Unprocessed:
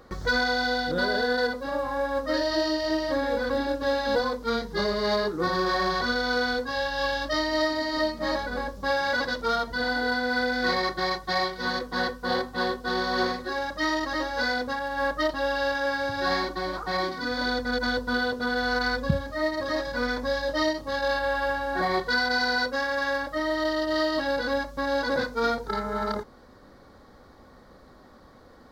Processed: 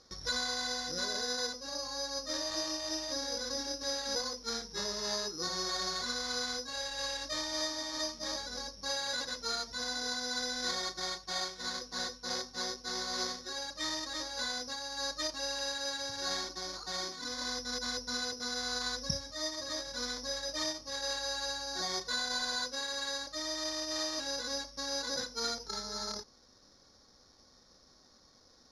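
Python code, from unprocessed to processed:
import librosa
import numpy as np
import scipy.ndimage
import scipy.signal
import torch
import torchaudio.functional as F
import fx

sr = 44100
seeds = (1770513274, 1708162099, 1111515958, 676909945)

y = (np.kron(x[::8], np.eye(8)[0]) * 8)[:len(x)]
y = fx.ladder_lowpass(y, sr, hz=5600.0, resonance_pct=30)
y = F.gain(torch.from_numpy(y), -8.0).numpy()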